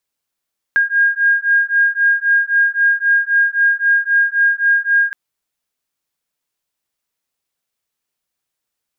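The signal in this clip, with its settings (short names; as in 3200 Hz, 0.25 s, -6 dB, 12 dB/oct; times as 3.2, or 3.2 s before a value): beating tones 1620 Hz, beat 3.8 Hz, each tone -14.5 dBFS 4.37 s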